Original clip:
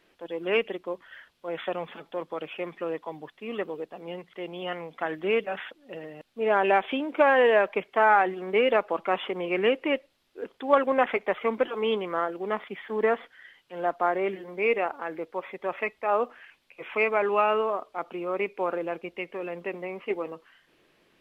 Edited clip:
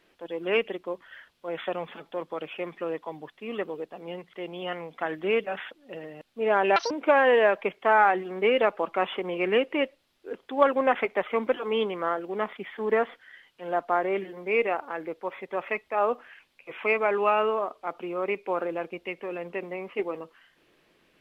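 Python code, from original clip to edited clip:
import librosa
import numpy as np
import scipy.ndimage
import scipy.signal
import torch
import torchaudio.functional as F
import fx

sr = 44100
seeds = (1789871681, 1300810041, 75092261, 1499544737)

y = fx.edit(x, sr, fx.speed_span(start_s=6.76, length_s=0.26, speed=1.76), tone=tone)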